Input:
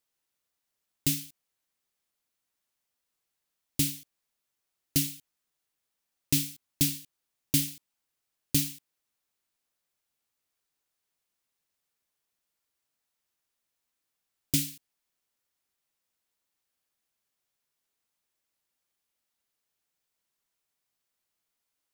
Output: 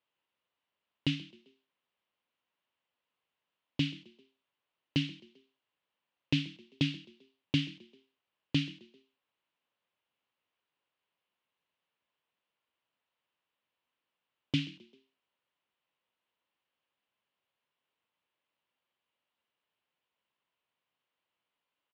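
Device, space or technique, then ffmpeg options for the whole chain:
frequency-shifting delay pedal into a guitar cabinet: -filter_complex "[0:a]asplit=4[link_01][link_02][link_03][link_04];[link_02]adelay=131,afreqshift=39,volume=-23dB[link_05];[link_03]adelay=262,afreqshift=78,volume=-29.2dB[link_06];[link_04]adelay=393,afreqshift=117,volume=-35.4dB[link_07];[link_01][link_05][link_06][link_07]amix=inputs=4:normalize=0,highpass=100,equalizer=frequency=540:width_type=q:width=4:gain=4,equalizer=frequency=1000:width_type=q:width=4:gain=6,equalizer=frequency=2900:width_type=q:width=4:gain=6,lowpass=frequency=3500:width=0.5412,lowpass=frequency=3500:width=1.3066"

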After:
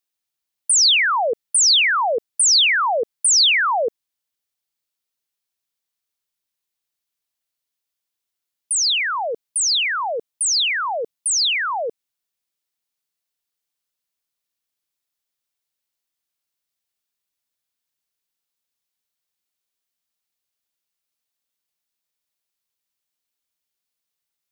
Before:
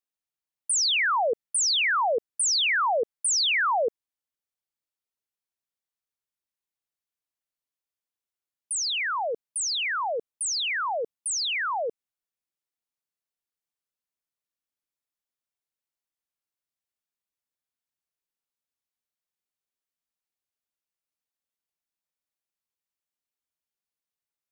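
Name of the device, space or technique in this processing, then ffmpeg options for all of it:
presence and air boost: -af "equalizer=frequency=4000:width_type=o:width=1.6:gain=5,highshelf=frequency=9100:gain=7,volume=4dB"

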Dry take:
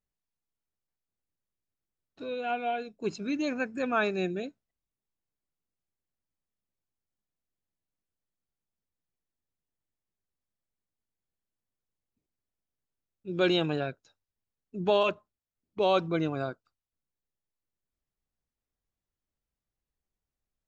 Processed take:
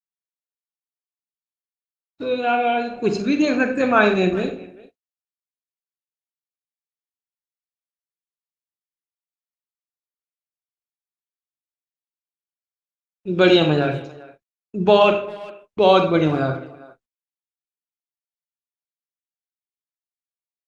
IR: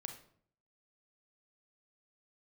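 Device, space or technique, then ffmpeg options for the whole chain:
speakerphone in a meeting room: -filter_complex "[0:a]asettb=1/sr,asplit=3[link_01][link_02][link_03];[link_01]atrim=end=4.004[link_04];[link_02]atrim=start=4:end=4.4,asetpts=PTS-STARTPTS,afade=type=in:duration=0.004:curve=qsin,afade=type=out:start_time=0.396:duration=0.004:curve=qsin,bandreject=frequency=5000:width=26[link_05];[link_03]atrim=start=4.396[link_06];[link_04][link_05]acrossfade=duration=0.004:curve1=hsin:curve2=qsin[link_07];[link_07][link_06]acrossfade=duration=0.004:curve1=qsin:curve2=hsin[link_08];[1:a]atrim=start_sample=2205[link_09];[link_08][link_09]afir=irnorm=-1:irlink=0,asplit=2[link_10][link_11];[link_11]adelay=400,highpass=300,lowpass=3400,asoftclip=type=hard:threshold=-24.5dB,volume=-20dB[link_12];[link_10][link_12]amix=inputs=2:normalize=0,dynaudnorm=framelen=140:gausssize=21:maxgain=14.5dB,agate=range=-59dB:threshold=-46dB:ratio=16:detection=peak,volume=1.5dB" -ar 48000 -c:a libopus -b:a 24k

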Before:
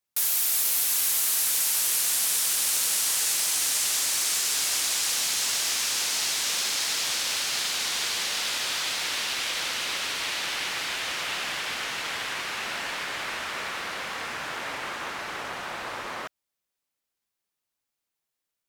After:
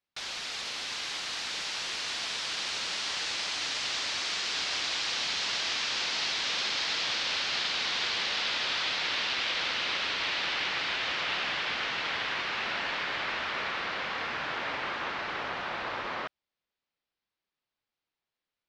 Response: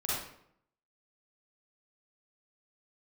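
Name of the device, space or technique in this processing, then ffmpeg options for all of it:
synthesiser wavefolder: -af "aeval=exprs='0.15*(abs(mod(val(0)/0.15+3,4)-2)-1)':channel_layout=same,lowpass=frequency=4600:width=0.5412,lowpass=frequency=4600:width=1.3066"

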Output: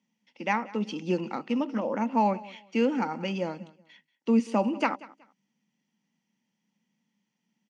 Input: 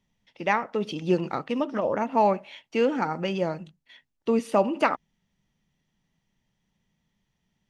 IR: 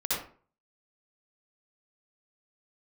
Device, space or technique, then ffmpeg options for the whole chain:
television speaker: -af "highpass=frequency=200:width=0.5412,highpass=frequency=200:width=1.3066,equalizer=frequency=220:width_type=q:width=4:gain=6,equalizer=frequency=400:width_type=q:width=4:gain=-8,equalizer=frequency=650:width_type=q:width=4:gain=-8,equalizer=frequency=1200:width_type=q:width=4:gain=-6,equalizer=frequency=1700:width_type=q:width=4:gain=-5,equalizer=frequency=3700:width_type=q:width=4:gain=-8,lowpass=frequency=7500:width=0.5412,lowpass=frequency=7500:width=1.3066,aecho=1:1:186|372:0.0944|0.0227"

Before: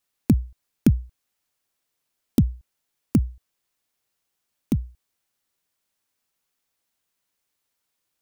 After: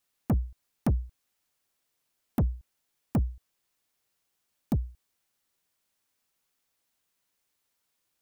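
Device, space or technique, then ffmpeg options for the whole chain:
saturation between pre-emphasis and de-emphasis: -af "highshelf=frequency=3800:gain=8.5,asoftclip=type=tanh:threshold=-20.5dB,highshelf=frequency=3800:gain=-8.5"

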